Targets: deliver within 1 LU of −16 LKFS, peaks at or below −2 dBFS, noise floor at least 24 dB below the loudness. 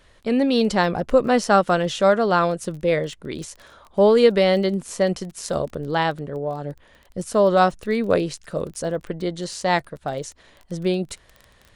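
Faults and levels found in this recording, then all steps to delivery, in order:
crackle rate 19 per second; integrated loudness −21.0 LKFS; sample peak −3.5 dBFS; target loudness −16.0 LKFS
→ click removal
level +5 dB
brickwall limiter −2 dBFS

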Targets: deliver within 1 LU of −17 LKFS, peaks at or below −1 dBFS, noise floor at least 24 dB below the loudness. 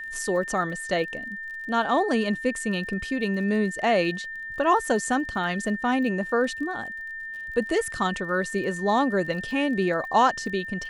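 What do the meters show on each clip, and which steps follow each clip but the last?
crackle rate 29 per second; interfering tone 1,800 Hz; level of the tone −33 dBFS; integrated loudness −25.5 LKFS; sample peak −8.5 dBFS; target loudness −17.0 LKFS
→ click removal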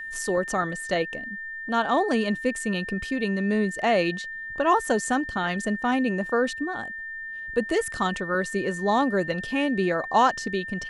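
crackle rate 0 per second; interfering tone 1,800 Hz; level of the tone −33 dBFS
→ notch filter 1,800 Hz, Q 30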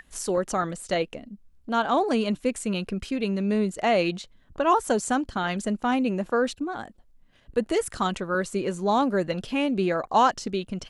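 interfering tone none found; integrated loudness −26.0 LKFS; sample peak −9.0 dBFS; target loudness −17.0 LKFS
→ level +9 dB
brickwall limiter −1 dBFS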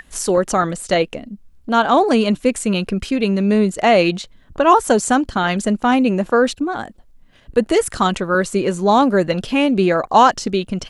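integrated loudness −17.0 LKFS; sample peak −1.0 dBFS; background noise floor −49 dBFS

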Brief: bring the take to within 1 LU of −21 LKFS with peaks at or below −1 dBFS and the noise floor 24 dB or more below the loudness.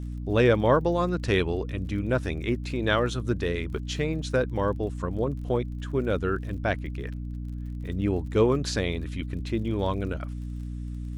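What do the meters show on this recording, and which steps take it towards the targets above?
crackle rate 42 per second; mains hum 60 Hz; hum harmonics up to 300 Hz; level of the hum −32 dBFS; integrated loudness −27.5 LKFS; sample peak −9.5 dBFS; target loudness −21.0 LKFS
→ click removal
hum removal 60 Hz, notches 5
level +6.5 dB

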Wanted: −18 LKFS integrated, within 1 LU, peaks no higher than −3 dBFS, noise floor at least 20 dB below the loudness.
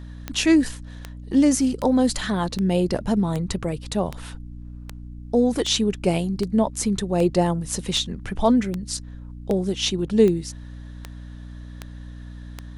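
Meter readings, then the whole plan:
number of clicks 17; mains hum 60 Hz; hum harmonics up to 300 Hz; level of the hum −35 dBFS; integrated loudness −22.5 LKFS; sample peak −4.5 dBFS; target loudness −18.0 LKFS
→ click removal
hum removal 60 Hz, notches 5
level +4.5 dB
brickwall limiter −3 dBFS

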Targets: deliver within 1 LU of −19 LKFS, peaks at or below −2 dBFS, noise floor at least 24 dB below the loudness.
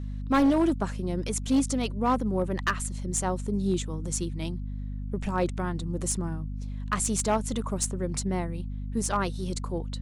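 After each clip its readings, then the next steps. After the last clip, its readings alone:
share of clipped samples 0.7%; peaks flattened at −17.5 dBFS; mains hum 50 Hz; hum harmonics up to 250 Hz; level of the hum −31 dBFS; integrated loudness −29.0 LKFS; sample peak −17.5 dBFS; target loudness −19.0 LKFS
→ clipped peaks rebuilt −17.5 dBFS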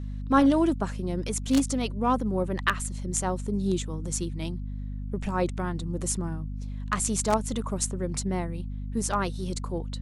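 share of clipped samples 0.0%; mains hum 50 Hz; hum harmonics up to 250 Hz; level of the hum −31 dBFS
→ mains-hum notches 50/100/150/200/250 Hz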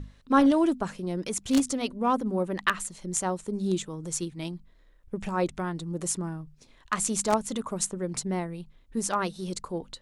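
mains hum none found; integrated loudness −28.5 LKFS; sample peak −8.0 dBFS; target loudness −19.0 LKFS
→ level +9.5 dB
brickwall limiter −2 dBFS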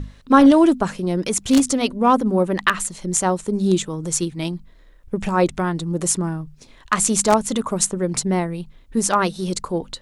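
integrated loudness −19.5 LKFS; sample peak −2.0 dBFS; background noise floor −49 dBFS

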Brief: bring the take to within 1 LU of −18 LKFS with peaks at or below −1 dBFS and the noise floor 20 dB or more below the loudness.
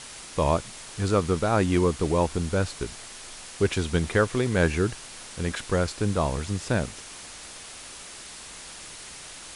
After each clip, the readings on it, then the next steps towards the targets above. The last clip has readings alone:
background noise floor −43 dBFS; target noise floor −46 dBFS; integrated loudness −26.0 LKFS; sample peak −7.5 dBFS; target loudness −18.0 LKFS
→ broadband denoise 6 dB, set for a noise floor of −43 dBFS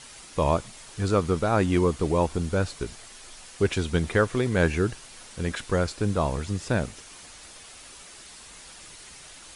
background noise floor −47 dBFS; integrated loudness −26.0 LKFS; sample peak −8.0 dBFS; target loudness −18.0 LKFS
→ level +8 dB
brickwall limiter −1 dBFS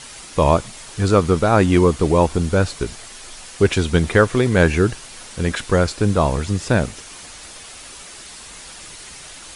integrated loudness −18.0 LKFS; sample peak −1.0 dBFS; background noise floor −39 dBFS

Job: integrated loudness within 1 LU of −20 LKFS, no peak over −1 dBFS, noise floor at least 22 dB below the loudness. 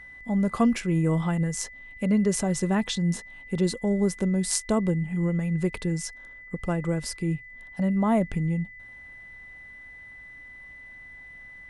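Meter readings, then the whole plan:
interfering tone 2,000 Hz; level of the tone −43 dBFS; integrated loudness −26.5 LKFS; sample peak −6.5 dBFS; target loudness −20.0 LKFS
→ notch filter 2,000 Hz, Q 30
level +6.5 dB
brickwall limiter −1 dBFS

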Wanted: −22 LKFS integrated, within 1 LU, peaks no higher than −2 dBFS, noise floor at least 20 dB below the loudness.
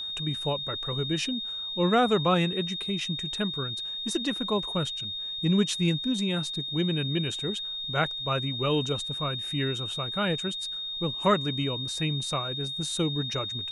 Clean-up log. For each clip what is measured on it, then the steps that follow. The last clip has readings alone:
crackle rate 25 per second; interfering tone 3,700 Hz; level of the tone −32 dBFS; integrated loudness −28.0 LKFS; sample peak −10.0 dBFS; target loudness −22.0 LKFS
→ click removal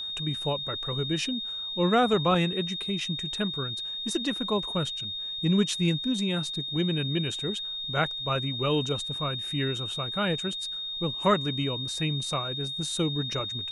crackle rate 0 per second; interfering tone 3,700 Hz; level of the tone −32 dBFS
→ notch filter 3,700 Hz, Q 30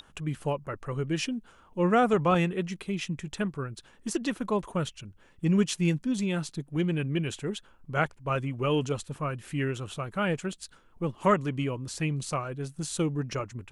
interfering tone none found; integrated loudness −30.0 LKFS; sample peak −10.5 dBFS; target loudness −22.0 LKFS
→ level +8 dB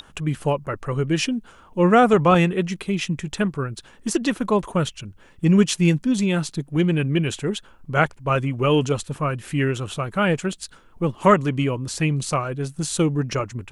integrated loudness −22.0 LKFS; sample peak −2.5 dBFS; background noise floor −50 dBFS

